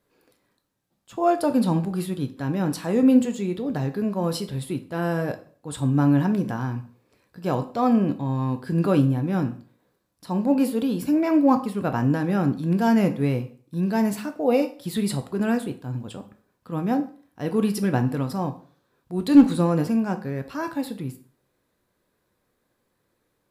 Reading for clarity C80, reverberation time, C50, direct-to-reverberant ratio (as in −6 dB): 18.0 dB, 0.45 s, 14.0 dB, 8.0 dB